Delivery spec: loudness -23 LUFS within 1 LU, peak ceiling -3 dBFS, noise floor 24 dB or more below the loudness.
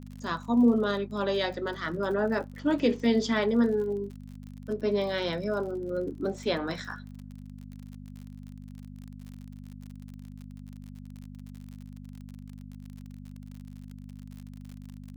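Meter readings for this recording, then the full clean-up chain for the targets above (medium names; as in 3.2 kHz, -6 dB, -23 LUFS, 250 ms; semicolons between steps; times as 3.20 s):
tick rate 48 per s; hum 50 Hz; highest harmonic 250 Hz; hum level -41 dBFS; loudness -28.5 LUFS; peak level -13.0 dBFS; loudness target -23.0 LUFS
-> de-click; de-hum 50 Hz, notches 5; trim +5.5 dB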